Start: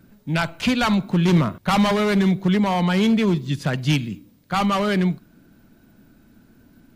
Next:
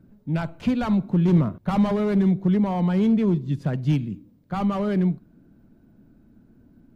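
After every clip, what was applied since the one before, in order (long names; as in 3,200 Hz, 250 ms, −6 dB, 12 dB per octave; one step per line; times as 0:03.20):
tilt shelving filter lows +8.5 dB, about 1,100 Hz
level −9 dB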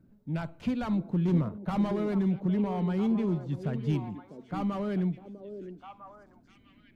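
echo through a band-pass that steps 650 ms, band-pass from 370 Hz, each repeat 1.4 octaves, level −5 dB
level −7.5 dB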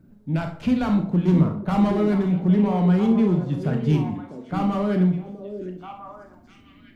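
convolution reverb RT60 0.50 s, pre-delay 23 ms, DRR 4 dB
level +7 dB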